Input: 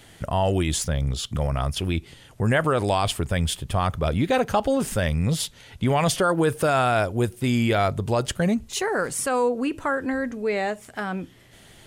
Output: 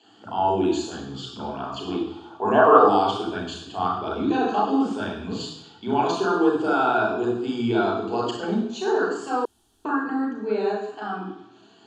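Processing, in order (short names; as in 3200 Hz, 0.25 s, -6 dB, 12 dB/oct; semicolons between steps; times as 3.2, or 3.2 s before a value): moving spectral ripple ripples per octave 1.5, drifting +1.1 Hz, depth 6 dB; 1.87–2.9 band shelf 790 Hz +12 dB; reverb RT60 0.85 s, pre-delay 33 ms, DRR -3 dB; dynamic EQ 420 Hz, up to +5 dB, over -18 dBFS, Q 1.8; elliptic band-pass 130–6700 Hz, stop band 40 dB; 9.45–9.85 room tone; fixed phaser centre 550 Hz, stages 6; gain -11.5 dB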